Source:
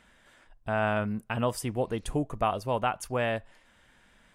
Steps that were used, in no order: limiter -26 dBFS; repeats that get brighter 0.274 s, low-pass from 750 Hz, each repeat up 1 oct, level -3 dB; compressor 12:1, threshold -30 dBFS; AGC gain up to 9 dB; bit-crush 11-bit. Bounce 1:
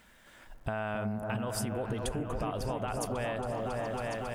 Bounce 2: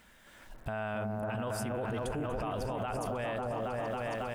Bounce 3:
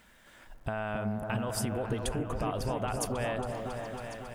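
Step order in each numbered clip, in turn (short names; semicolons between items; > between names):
limiter > AGC > bit-crush > repeats that get brighter > compressor; bit-crush > repeats that get brighter > AGC > limiter > compressor; limiter > AGC > bit-crush > compressor > repeats that get brighter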